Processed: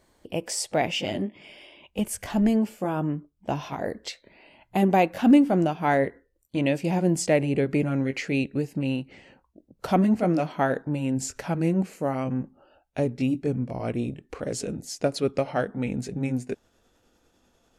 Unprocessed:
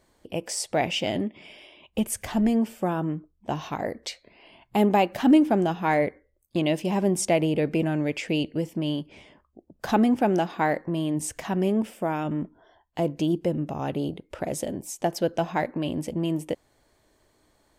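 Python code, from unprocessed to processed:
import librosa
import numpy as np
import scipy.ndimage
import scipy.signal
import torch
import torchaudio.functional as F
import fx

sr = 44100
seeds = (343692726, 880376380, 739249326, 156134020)

y = fx.pitch_glide(x, sr, semitones=-4.0, runs='starting unshifted')
y = y * 10.0 ** (1.0 / 20.0)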